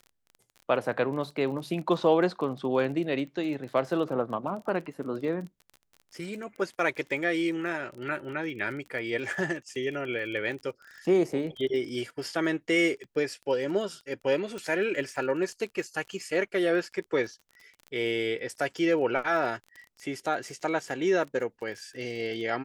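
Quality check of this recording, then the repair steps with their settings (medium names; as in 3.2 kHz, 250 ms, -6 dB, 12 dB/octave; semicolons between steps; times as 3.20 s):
crackle 25 per s -37 dBFS
14.58 s: pop -24 dBFS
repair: de-click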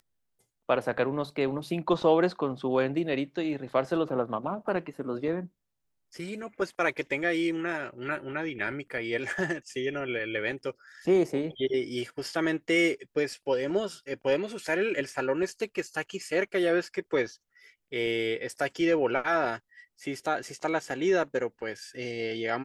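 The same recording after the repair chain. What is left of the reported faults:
nothing left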